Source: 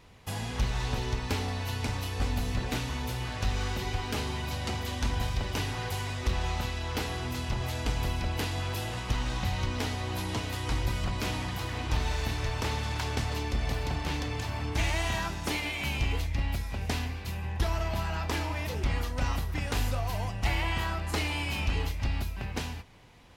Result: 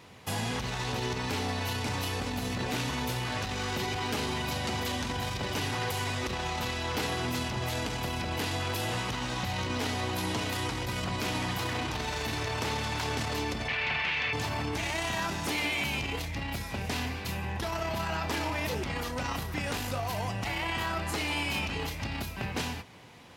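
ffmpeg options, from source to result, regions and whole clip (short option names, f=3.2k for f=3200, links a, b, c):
-filter_complex "[0:a]asettb=1/sr,asplit=3[a][b][c];[a]atrim=end=13.684[d];[b]atrim=start=13.68:end=14.33,asetpts=PTS-STARTPTS,afade=t=in:d=0.004:c=qsin,afade=t=out:st=0.646:d=0.004:c=qsin,lowpass=f=2.4k:t=q:w=2.5,tiltshelf=f=1.2k:g=-8,bandreject=f=300:w=6[e];[c]atrim=start=14.326[f];[d][e]acrossfade=d=0.004:c1=hsin:c2=qsin[g];[g][f]acrossfade=d=0.004:c1=qsin:c2=hsin,alimiter=level_in=3dB:limit=-24dB:level=0:latency=1:release=11,volume=-3dB,highpass=120,volume=5.5dB"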